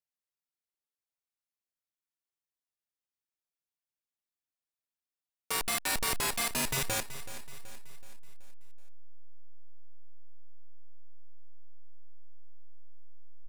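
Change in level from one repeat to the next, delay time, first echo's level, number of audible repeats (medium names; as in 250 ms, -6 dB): -6.0 dB, 377 ms, -14.0 dB, 4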